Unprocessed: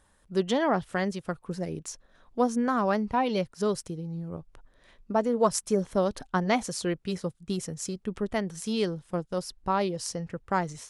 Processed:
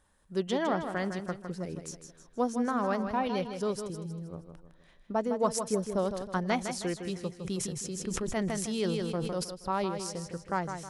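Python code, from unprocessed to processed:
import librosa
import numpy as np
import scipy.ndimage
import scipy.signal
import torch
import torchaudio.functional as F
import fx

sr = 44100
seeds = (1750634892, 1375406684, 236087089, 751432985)

p1 = x + fx.echo_feedback(x, sr, ms=158, feedback_pct=41, wet_db=-8, dry=0)
p2 = fx.sustainer(p1, sr, db_per_s=22.0, at=(7.43, 9.43), fade=0.02)
y = p2 * 10.0 ** (-4.5 / 20.0)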